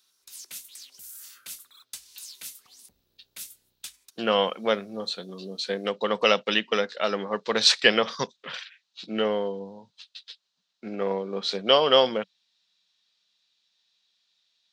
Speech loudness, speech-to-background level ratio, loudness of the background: -24.5 LUFS, 17.0 dB, -41.5 LUFS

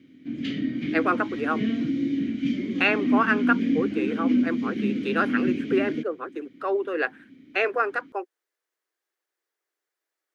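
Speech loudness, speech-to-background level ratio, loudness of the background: -27.5 LUFS, -1.0 dB, -26.5 LUFS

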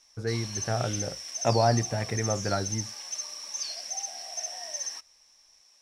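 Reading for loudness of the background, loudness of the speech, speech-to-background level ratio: -34.0 LUFS, -29.5 LUFS, 4.5 dB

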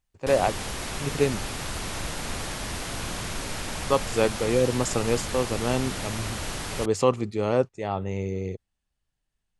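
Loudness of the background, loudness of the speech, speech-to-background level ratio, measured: -32.5 LUFS, -26.5 LUFS, 6.0 dB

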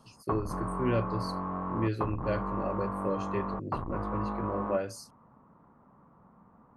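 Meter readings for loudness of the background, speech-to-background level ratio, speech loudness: -35.5 LUFS, 0.5 dB, -35.0 LUFS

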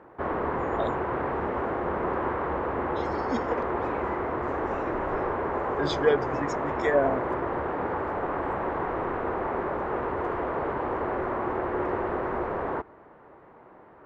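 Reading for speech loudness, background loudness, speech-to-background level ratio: -29.5 LUFS, -29.5 LUFS, 0.0 dB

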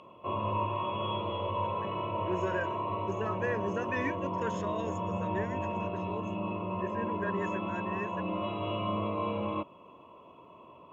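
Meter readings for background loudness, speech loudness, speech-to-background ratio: -34.0 LUFS, -38.5 LUFS, -4.5 dB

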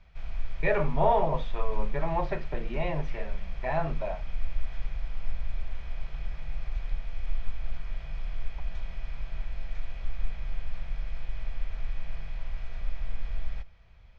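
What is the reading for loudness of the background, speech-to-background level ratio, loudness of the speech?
-40.5 LUFS, 9.5 dB, -31.0 LUFS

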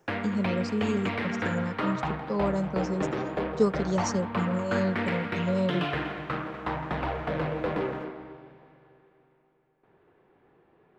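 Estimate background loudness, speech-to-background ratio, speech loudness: -32.0 LUFS, 1.5 dB, -30.5 LUFS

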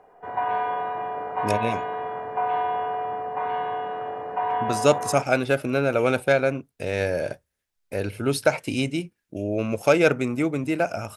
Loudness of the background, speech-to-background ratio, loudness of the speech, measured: -28.0 LUFS, 4.0 dB, -24.0 LUFS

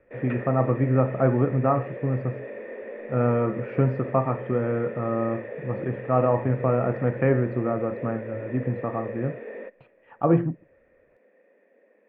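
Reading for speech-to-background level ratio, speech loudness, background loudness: 11.5 dB, -25.5 LUFS, -37.0 LUFS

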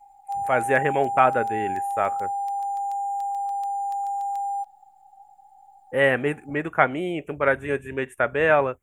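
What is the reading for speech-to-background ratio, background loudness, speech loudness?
4.5 dB, -28.0 LUFS, -23.5 LUFS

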